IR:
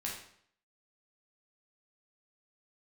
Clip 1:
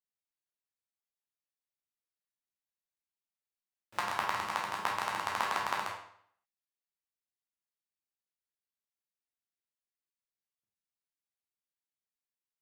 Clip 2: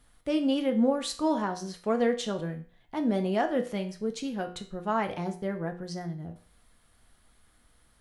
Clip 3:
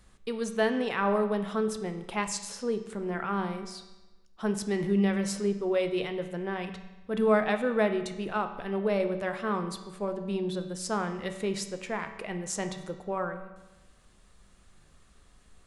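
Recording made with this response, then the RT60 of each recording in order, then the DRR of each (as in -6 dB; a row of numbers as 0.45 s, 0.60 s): 1; 0.65 s, 0.40 s, 1.1 s; -3.5 dB, 4.5 dB, 7.0 dB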